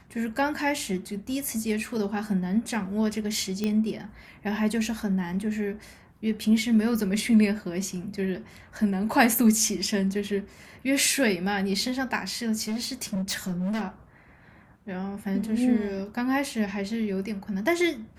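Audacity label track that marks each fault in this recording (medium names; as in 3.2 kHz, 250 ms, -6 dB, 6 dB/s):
3.640000	3.640000	pop -15 dBFS
12.630000	13.830000	clipped -25.5 dBFS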